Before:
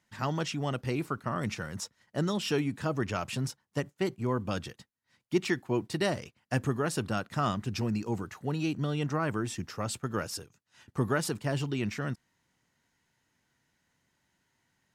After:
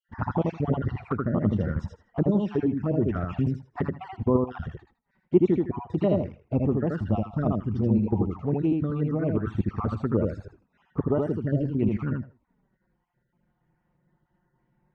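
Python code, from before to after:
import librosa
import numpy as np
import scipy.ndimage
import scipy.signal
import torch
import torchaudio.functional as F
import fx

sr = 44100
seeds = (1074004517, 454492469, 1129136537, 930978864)

p1 = fx.spec_dropout(x, sr, seeds[0], share_pct=35)
p2 = fx.rider(p1, sr, range_db=5, speed_s=0.5)
p3 = fx.dynamic_eq(p2, sr, hz=130.0, q=3.4, threshold_db=-49.0, ratio=4.0, max_db=-8)
p4 = scipy.signal.sosfilt(scipy.signal.butter(2, 1000.0, 'lowpass', fs=sr, output='sos'), p3)
p5 = fx.low_shelf(p4, sr, hz=100.0, db=9.5)
p6 = p5 + fx.echo_feedback(p5, sr, ms=79, feedback_pct=20, wet_db=-3, dry=0)
p7 = fx.env_flanger(p6, sr, rest_ms=5.7, full_db=-27.0)
y = p7 * 10.0 ** (8.0 / 20.0)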